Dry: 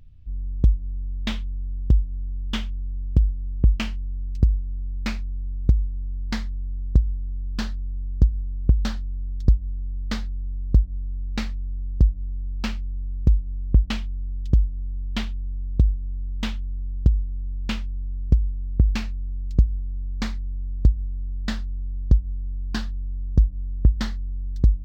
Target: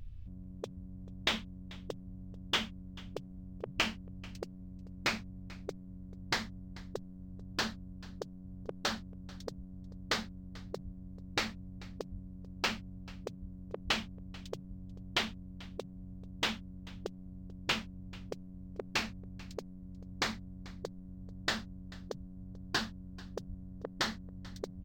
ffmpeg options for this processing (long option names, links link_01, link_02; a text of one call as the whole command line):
ffmpeg -i in.wav -af "afftfilt=real='re*lt(hypot(re,im),0.2)':imag='im*lt(hypot(re,im),0.2)':win_size=1024:overlap=0.75,aecho=1:1:439:0.0841,volume=1.5dB" out.wav